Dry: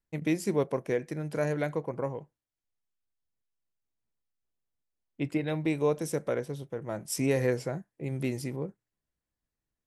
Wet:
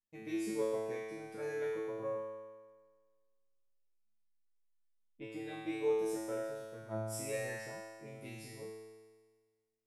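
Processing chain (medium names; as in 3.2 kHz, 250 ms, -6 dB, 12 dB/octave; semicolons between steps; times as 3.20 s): feedback comb 110 Hz, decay 1.5 s, harmonics all, mix 100%; trim +9.5 dB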